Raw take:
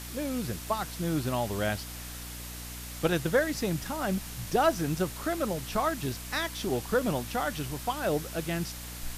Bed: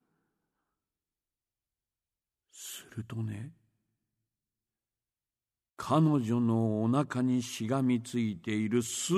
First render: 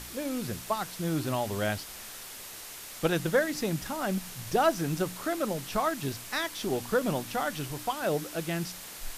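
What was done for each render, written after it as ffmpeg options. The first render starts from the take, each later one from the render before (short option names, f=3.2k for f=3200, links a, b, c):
-af "bandreject=f=60:t=h:w=4,bandreject=f=120:t=h:w=4,bandreject=f=180:t=h:w=4,bandreject=f=240:t=h:w=4,bandreject=f=300:t=h:w=4"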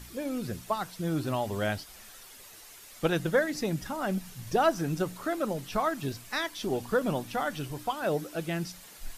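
-af "afftdn=nr=9:nf=-44"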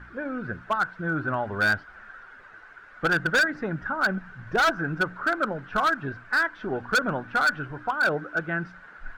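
-af "lowpass=f=1.5k:t=q:w=11,asoftclip=type=hard:threshold=-17.5dB"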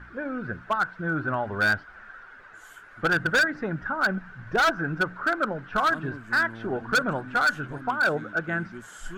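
-filter_complex "[1:a]volume=-13.5dB[a];[0:a][a]amix=inputs=2:normalize=0"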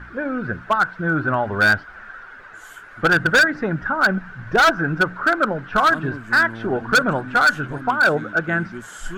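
-af "volume=7dB"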